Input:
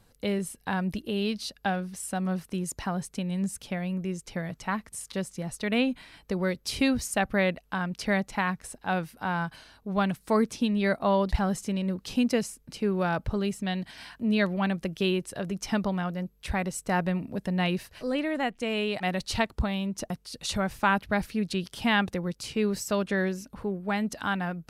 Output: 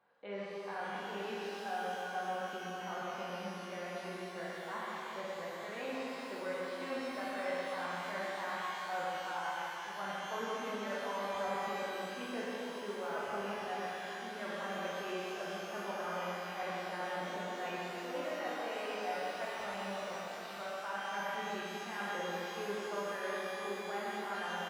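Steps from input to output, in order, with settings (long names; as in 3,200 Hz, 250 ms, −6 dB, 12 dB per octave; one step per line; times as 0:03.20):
high-pass filter 800 Hz 12 dB per octave
high-shelf EQ 3,000 Hz −10.5 dB
reversed playback
downward compressor 4 to 1, threshold −40 dBFS, peak gain reduction 16 dB
reversed playback
head-to-tape spacing loss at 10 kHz 43 dB
double-tracking delay 45 ms −12 dB
single-tap delay 125 ms −6.5 dB
reverb with rising layers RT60 3.5 s, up +12 semitones, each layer −8 dB, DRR −6.5 dB
level +1 dB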